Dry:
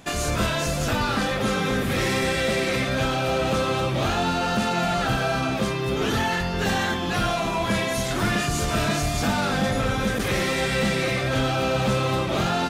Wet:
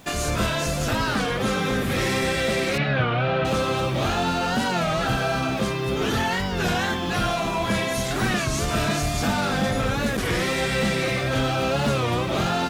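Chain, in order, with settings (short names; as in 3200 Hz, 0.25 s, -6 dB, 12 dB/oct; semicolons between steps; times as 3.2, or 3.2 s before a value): bit-crush 9-bit; 2.78–3.45 speaker cabinet 110–3500 Hz, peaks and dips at 140 Hz +10 dB, 270 Hz -4 dB, 1600 Hz +5 dB; record warp 33 1/3 rpm, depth 160 cents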